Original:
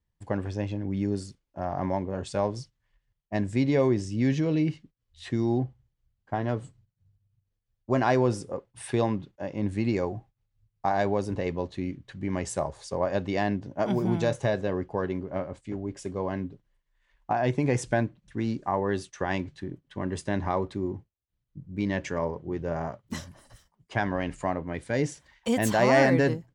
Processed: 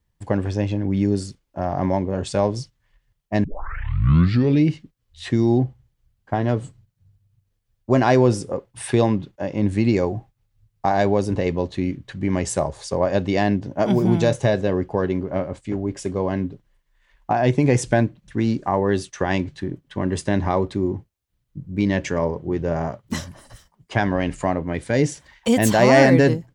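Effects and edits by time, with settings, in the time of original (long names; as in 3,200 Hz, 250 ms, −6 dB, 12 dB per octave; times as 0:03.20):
0:03.44: tape start 1.20 s
whole clip: dynamic equaliser 1,200 Hz, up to −4 dB, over −38 dBFS, Q 0.76; level +8.5 dB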